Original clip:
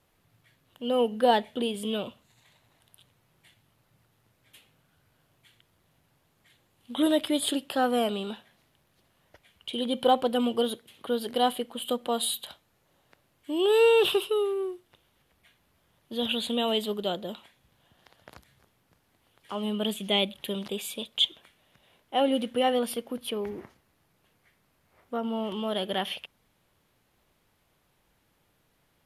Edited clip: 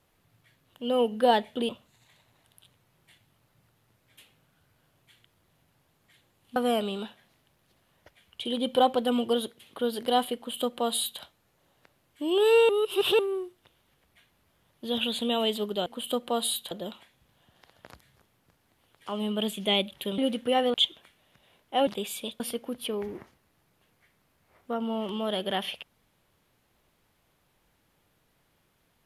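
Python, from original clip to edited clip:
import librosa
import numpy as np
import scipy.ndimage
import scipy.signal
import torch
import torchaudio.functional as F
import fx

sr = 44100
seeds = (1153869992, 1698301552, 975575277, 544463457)

y = fx.edit(x, sr, fx.cut(start_s=1.69, length_s=0.36),
    fx.cut(start_s=6.92, length_s=0.92),
    fx.duplicate(start_s=11.64, length_s=0.85, to_s=17.14),
    fx.reverse_span(start_s=13.97, length_s=0.5),
    fx.swap(start_s=20.61, length_s=0.53, other_s=22.27, other_length_s=0.56), tone=tone)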